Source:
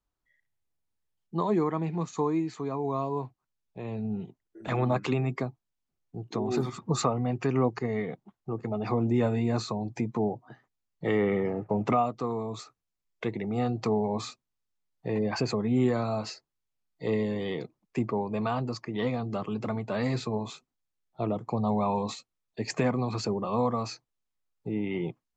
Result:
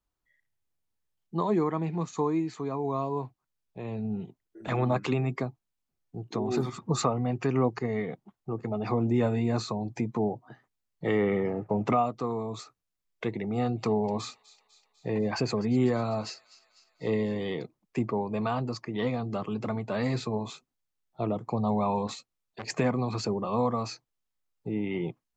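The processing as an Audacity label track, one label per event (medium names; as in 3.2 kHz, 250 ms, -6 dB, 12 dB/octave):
13.340000	17.480000	feedback echo behind a high-pass 249 ms, feedback 61%, high-pass 2.4 kHz, level -16 dB
22.070000	22.750000	transformer saturation saturates under 1.5 kHz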